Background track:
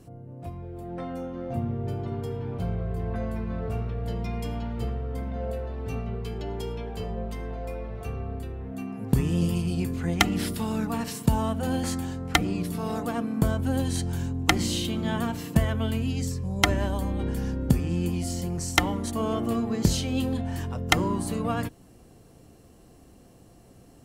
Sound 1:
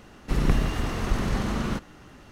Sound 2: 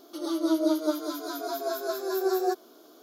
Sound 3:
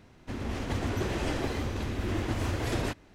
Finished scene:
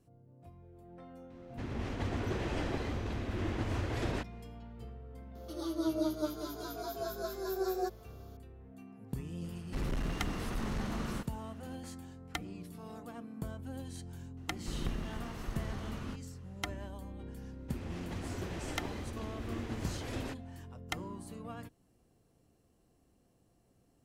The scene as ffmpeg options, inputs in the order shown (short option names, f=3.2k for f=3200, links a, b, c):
-filter_complex "[3:a]asplit=2[a][b];[1:a]asplit=2[c][d];[0:a]volume=-17dB[e];[a]highshelf=f=6.9k:g=-10[f];[c]asoftclip=type=hard:threshold=-21dB[g];[f]atrim=end=3.14,asetpts=PTS-STARTPTS,volume=-4.5dB,afade=t=in:d=0.004:c=hsin,afade=t=out:st=3.136:d=0.004:c=hsin,adelay=1300[h];[2:a]atrim=end=3.02,asetpts=PTS-STARTPTS,volume=-8dB,afade=t=in:d=0.004:c=hsin,afade=t=out:st=3.016:d=0.004:c=hsin,adelay=5350[i];[g]atrim=end=2.31,asetpts=PTS-STARTPTS,volume=-9.5dB,afade=t=in:d=0.004:c=hsin,afade=t=out:st=2.306:d=0.004:c=hsin,adelay=9440[j];[d]atrim=end=2.31,asetpts=PTS-STARTPTS,volume=-15dB,afade=t=in:d=0.004:c=hsin,afade=t=out:st=2.306:d=0.004:c=hsin,adelay=14370[k];[b]atrim=end=3.14,asetpts=PTS-STARTPTS,volume=-10dB,afade=t=in:d=0.004:c=hsin,afade=t=out:st=3.136:d=0.004:c=hsin,adelay=17410[l];[e][h][i][j][k][l]amix=inputs=6:normalize=0"